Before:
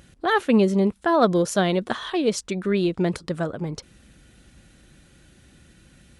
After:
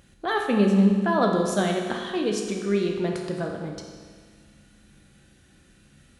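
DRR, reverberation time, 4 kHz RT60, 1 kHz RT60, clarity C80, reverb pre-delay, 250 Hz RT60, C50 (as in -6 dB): 1.0 dB, 1.7 s, 1.6 s, 1.7 s, 5.0 dB, 10 ms, 1.7 s, 3.5 dB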